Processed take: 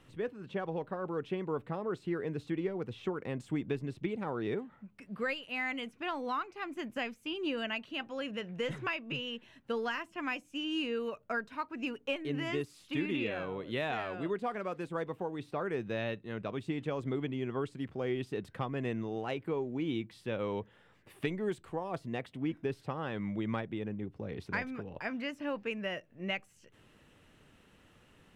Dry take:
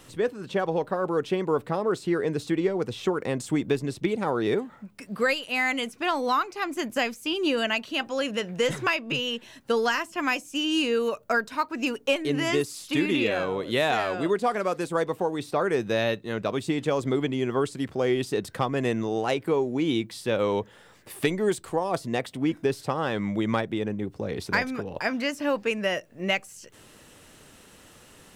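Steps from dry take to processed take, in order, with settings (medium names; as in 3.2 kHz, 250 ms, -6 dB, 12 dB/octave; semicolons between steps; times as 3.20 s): FFT filter 150 Hz 0 dB, 560 Hz -5 dB, 2.8 kHz -3 dB, 4.7 kHz -12 dB, 7.9 kHz -15 dB; trim -6.5 dB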